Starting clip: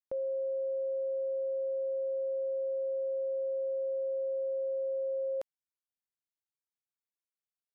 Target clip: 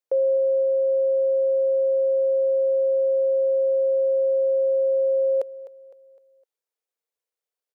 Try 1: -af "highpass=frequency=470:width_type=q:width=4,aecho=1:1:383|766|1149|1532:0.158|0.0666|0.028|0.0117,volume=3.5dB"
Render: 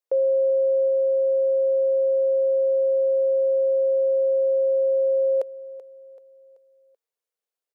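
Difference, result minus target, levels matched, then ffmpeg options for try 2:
echo 128 ms late
-af "highpass=frequency=470:width_type=q:width=4,aecho=1:1:255|510|765|1020:0.158|0.0666|0.028|0.0117,volume=3.5dB"

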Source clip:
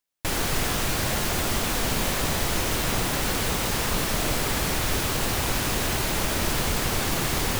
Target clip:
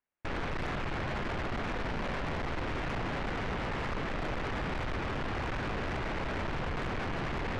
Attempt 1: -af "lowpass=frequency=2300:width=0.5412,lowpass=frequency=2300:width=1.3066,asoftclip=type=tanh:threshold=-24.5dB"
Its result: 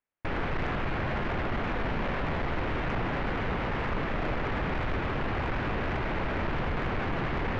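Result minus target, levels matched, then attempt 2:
soft clipping: distortion −5 dB
-af "lowpass=frequency=2300:width=0.5412,lowpass=frequency=2300:width=1.3066,asoftclip=type=tanh:threshold=-31.5dB"

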